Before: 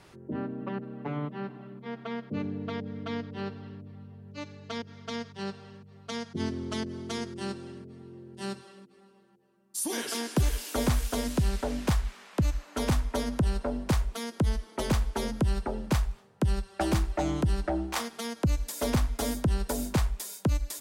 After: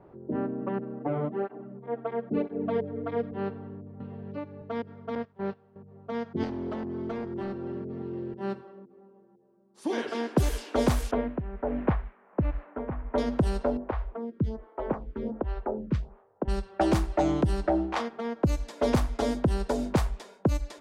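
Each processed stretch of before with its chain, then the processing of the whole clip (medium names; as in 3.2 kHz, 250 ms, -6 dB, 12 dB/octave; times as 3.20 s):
0.99–3.32 s: band-stop 1 kHz, Q 13 + dynamic bell 520 Hz, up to +7 dB, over -48 dBFS, Q 0.78 + cancelling through-zero flanger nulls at 1 Hz, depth 5.7 ms
4.00–4.62 s: low-pass 6.2 kHz + three bands compressed up and down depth 100%
5.15–5.76 s: one-bit delta coder 32 kbps, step -49 dBFS + gate -41 dBFS, range -15 dB
6.43–8.34 s: hard clipper -33.5 dBFS + three bands compressed up and down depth 100%
11.11–13.18 s: low-pass 2.3 kHz 24 dB/octave + tremolo 1.4 Hz, depth 68%
13.77–16.48 s: tape spacing loss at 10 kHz 26 dB + lamp-driven phase shifter 1.3 Hz
whole clip: level-controlled noise filter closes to 830 Hz, open at -21.5 dBFS; peaking EQ 500 Hz +7.5 dB 2.5 oct; trim -1.5 dB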